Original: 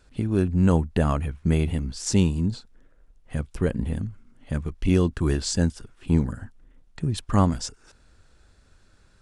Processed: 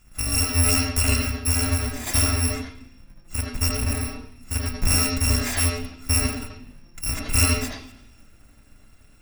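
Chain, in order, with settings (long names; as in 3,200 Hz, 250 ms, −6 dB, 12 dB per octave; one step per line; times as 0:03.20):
samples in bit-reversed order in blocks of 256 samples
low-pass filter 2,600 Hz 6 dB per octave
low-shelf EQ 490 Hz −3.5 dB
convolution reverb RT60 0.65 s, pre-delay 76 ms, DRR −0.5 dB
level +7.5 dB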